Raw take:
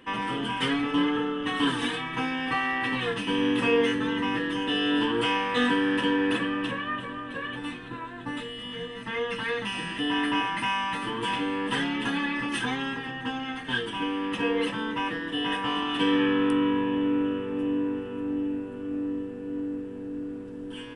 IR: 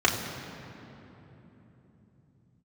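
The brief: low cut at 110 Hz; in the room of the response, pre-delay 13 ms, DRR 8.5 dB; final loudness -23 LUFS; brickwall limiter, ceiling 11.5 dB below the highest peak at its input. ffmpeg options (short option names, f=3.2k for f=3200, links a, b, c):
-filter_complex "[0:a]highpass=110,alimiter=limit=-23.5dB:level=0:latency=1,asplit=2[a][b];[1:a]atrim=start_sample=2205,adelay=13[c];[b][c]afir=irnorm=-1:irlink=0,volume=-24.5dB[d];[a][d]amix=inputs=2:normalize=0,volume=8dB"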